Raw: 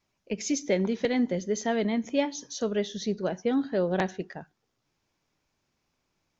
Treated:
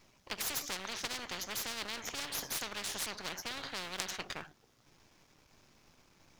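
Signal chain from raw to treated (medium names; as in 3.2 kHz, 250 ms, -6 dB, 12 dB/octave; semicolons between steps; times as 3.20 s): partial rectifier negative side -12 dB; spectrum-flattening compressor 10:1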